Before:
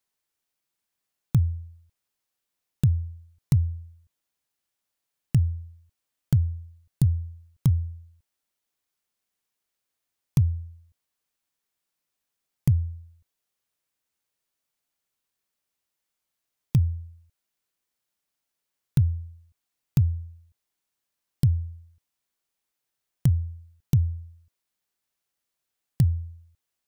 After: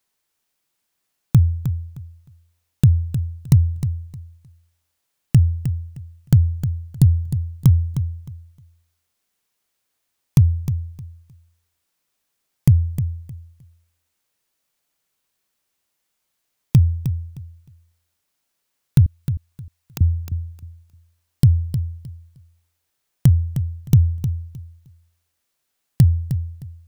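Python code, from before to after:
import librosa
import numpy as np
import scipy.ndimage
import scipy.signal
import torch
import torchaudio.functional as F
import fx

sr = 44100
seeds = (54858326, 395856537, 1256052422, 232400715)

p1 = fx.highpass(x, sr, hz=540.0, slope=12, at=(19.06, 20.01))
p2 = p1 + fx.echo_feedback(p1, sr, ms=309, feedback_pct=21, wet_db=-10.0, dry=0)
y = p2 * librosa.db_to_amplitude(7.5)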